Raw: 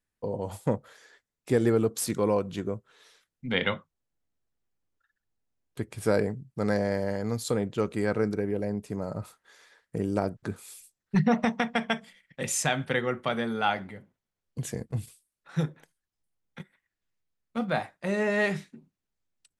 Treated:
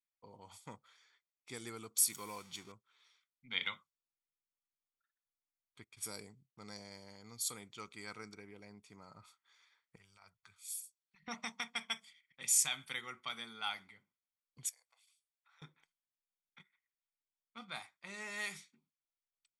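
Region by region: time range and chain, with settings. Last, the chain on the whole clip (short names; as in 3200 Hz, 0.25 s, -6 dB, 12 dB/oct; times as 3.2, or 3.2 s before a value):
2.11–2.72 zero-crossing step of -40 dBFS + upward compressor, threshold -32 dBFS
5.84–7.4 gate -48 dBFS, range -12 dB + dynamic EQ 1600 Hz, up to -8 dB, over -44 dBFS, Q 0.85
9.96–11.28 passive tone stack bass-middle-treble 10-0-10 + negative-ratio compressor -44 dBFS + three-band expander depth 40%
14.69–15.62 steep high-pass 530 Hz 72 dB/oct + compressor 4:1, threshold -55 dBFS
whole clip: pre-emphasis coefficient 0.97; low-pass opened by the level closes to 2400 Hz, open at -38 dBFS; comb 0.9 ms, depth 56%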